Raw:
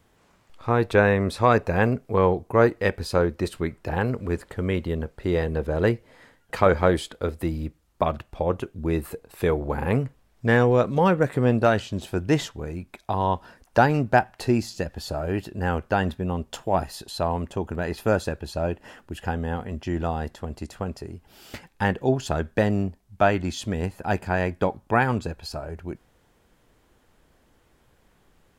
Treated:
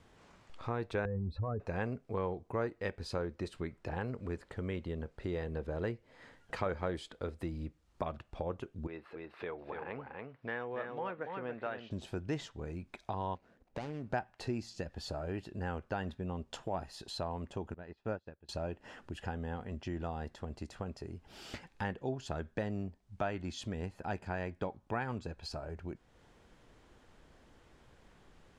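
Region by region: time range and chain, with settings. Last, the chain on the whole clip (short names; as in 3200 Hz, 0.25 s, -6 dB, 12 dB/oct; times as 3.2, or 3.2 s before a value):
1.05–1.6 spectral contrast raised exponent 2.2 + RIAA curve playback + compressor 3:1, threshold -19 dBFS
8.87–11.91 HPF 1100 Hz 6 dB/oct + air absorption 330 m + echo 0.284 s -6 dB
13.35–14.1 median filter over 41 samples + low shelf 130 Hz -8.5 dB + compressor 4:1, threshold -28 dBFS
17.74–18.49 air absorption 140 m + upward expander 2.5:1, over -36 dBFS
whole clip: LPF 7100 Hz 12 dB/oct; compressor 2:1, threshold -46 dBFS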